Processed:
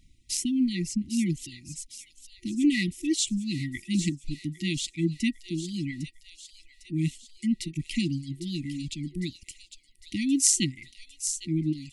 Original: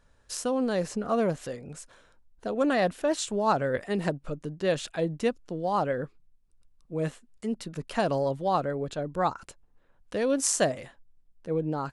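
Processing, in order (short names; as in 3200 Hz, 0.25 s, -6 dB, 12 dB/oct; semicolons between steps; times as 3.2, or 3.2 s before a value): reverb removal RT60 1.7 s; thin delay 0.804 s, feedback 55%, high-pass 3300 Hz, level -8.5 dB; FFT band-reject 360–1900 Hz; gain +6 dB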